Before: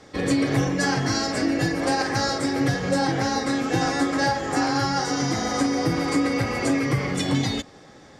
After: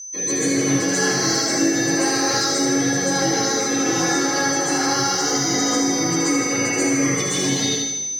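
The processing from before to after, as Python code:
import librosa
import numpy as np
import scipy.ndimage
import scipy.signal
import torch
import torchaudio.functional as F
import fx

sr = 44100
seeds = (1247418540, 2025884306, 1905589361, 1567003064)

p1 = scipy.signal.sosfilt(scipy.signal.butter(4, 130.0, 'highpass', fs=sr, output='sos'), x)
p2 = fx.low_shelf_res(p1, sr, hz=300.0, db=-6.5, q=1.5)
p3 = p2 + 10.0 ** (-32.0 / 20.0) * np.sin(2.0 * np.pi * 6100.0 * np.arange(len(p2)) / sr)
p4 = fx.peak_eq(p3, sr, hz=800.0, db=-10.5, octaves=2.2)
p5 = fx.spec_gate(p4, sr, threshold_db=-25, keep='strong')
p6 = 10.0 ** (-26.0 / 20.0) * np.tanh(p5 / 10.0 ** (-26.0 / 20.0))
p7 = p5 + F.gain(torch.from_numpy(p6), -0.5).numpy()
p8 = fx.echo_wet_highpass(p7, sr, ms=78, feedback_pct=63, hz=3100.0, wet_db=-4)
p9 = fx.rev_plate(p8, sr, seeds[0], rt60_s=1.1, hf_ratio=0.5, predelay_ms=115, drr_db=-9.0)
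y = F.gain(torch.from_numpy(p9), -5.0).numpy()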